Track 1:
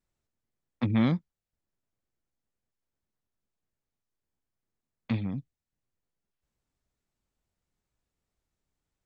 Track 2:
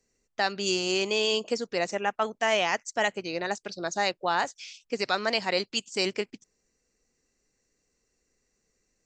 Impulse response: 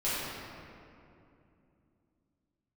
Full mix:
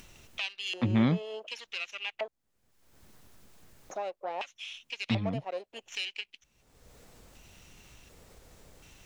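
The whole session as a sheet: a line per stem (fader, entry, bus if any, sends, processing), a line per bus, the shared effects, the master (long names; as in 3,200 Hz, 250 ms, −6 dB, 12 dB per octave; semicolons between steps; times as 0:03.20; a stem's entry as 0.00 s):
−0.5 dB, 0.00 s, no send, no processing
−2.5 dB, 0.00 s, muted 0:02.28–0:03.90, no send, lower of the sound and its delayed copy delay 0.32 ms; auto-filter band-pass square 0.68 Hz 620–2,900 Hz; meter weighting curve A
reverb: not used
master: upward compression, threshold −31 dBFS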